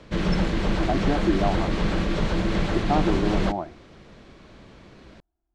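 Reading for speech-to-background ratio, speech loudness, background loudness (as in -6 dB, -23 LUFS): -2.5 dB, -28.0 LUFS, -25.5 LUFS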